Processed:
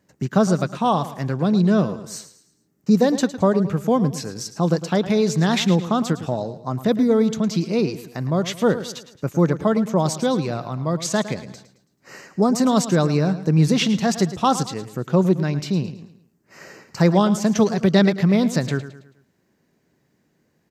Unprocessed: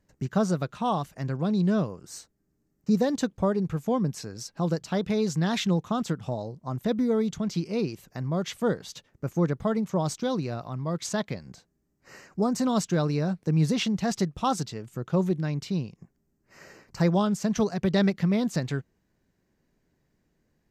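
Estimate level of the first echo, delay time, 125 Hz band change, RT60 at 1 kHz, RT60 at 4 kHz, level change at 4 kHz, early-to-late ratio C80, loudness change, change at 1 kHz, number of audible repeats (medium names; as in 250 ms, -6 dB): -13.5 dB, 109 ms, +6.5 dB, no reverb, no reverb, +7.5 dB, no reverb, +7.0 dB, +7.5 dB, 3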